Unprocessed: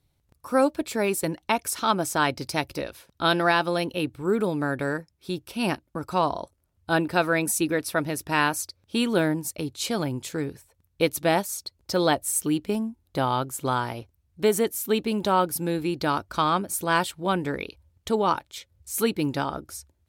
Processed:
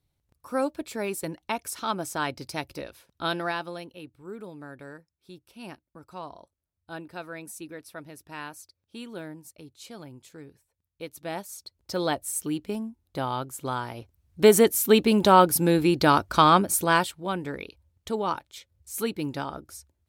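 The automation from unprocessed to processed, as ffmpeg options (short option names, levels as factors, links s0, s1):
-af "volume=5.96,afade=t=out:st=3.24:d=0.69:silence=0.316228,afade=t=in:st=11.11:d=0.86:silence=0.281838,afade=t=in:st=13.93:d=0.56:silence=0.298538,afade=t=out:st=16.65:d=0.53:silence=0.298538"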